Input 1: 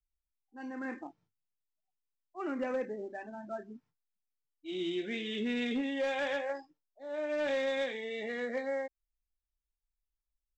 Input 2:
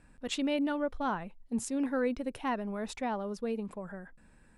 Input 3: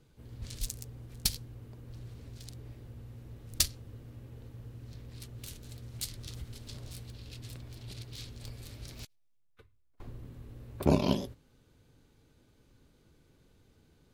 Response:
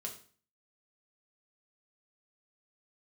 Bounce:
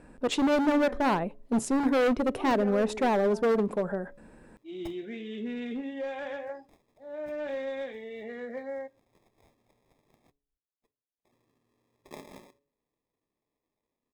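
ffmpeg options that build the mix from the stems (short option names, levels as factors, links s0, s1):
-filter_complex "[0:a]highshelf=f=2200:g=-12,volume=0.794,asplit=2[s0][s1];[s1]volume=0.211[s2];[1:a]equalizer=f=440:w=0.54:g=13.5,asoftclip=type=hard:threshold=0.0631,volume=1.26,asplit=2[s3][s4];[s4]volume=0.0841[s5];[2:a]highpass=330,acrusher=samples=30:mix=1:aa=0.000001,adelay=1250,volume=0.15,asplit=2[s6][s7];[s7]volume=0.112[s8];[3:a]atrim=start_sample=2205[s9];[s2][s5][s8]amix=inputs=3:normalize=0[s10];[s10][s9]afir=irnorm=-1:irlink=0[s11];[s0][s3][s6][s11]amix=inputs=4:normalize=0,bandreject=f=141.4:t=h:w=4,bandreject=f=282.8:t=h:w=4,bandreject=f=424.2:t=h:w=4,bandreject=f=565.6:t=h:w=4"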